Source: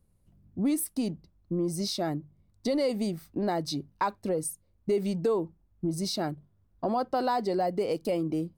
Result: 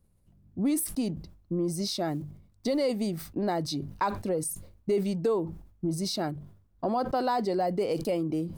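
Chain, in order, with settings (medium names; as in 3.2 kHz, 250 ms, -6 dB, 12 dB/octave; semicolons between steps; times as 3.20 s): 2.08–2.81 s: block-companded coder 7-bit; decay stretcher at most 92 dB/s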